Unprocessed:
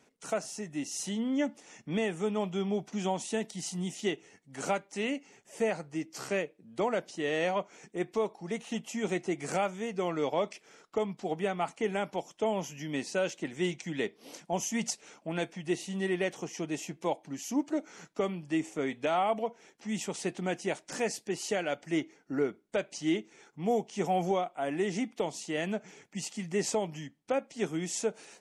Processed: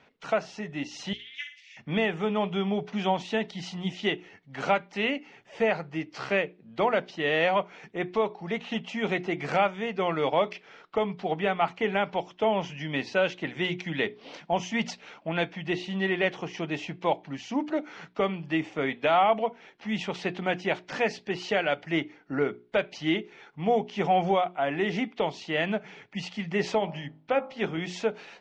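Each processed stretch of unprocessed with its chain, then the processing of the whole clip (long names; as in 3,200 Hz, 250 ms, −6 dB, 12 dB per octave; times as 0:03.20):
0:01.13–0:01.77: elliptic high-pass filter 2,100 Hz, stop band 50 dB + flutter between parallel walls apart 9.7 metres, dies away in 0.43 s + highs frequency-modulated by the lows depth 0.38 ms
0:26.78–0:27.78: high-frequency loss of the air 52 metres + hum removal 52.21 Hz, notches 28
whole clip: low-pass filter 3,900 Hz 24 dB per octave; parametric band 310 Hz −6.5 dB 1.7 octaves; mains-hum notches 60/120/180/240/300/360/420 Hz; level +8.5 dB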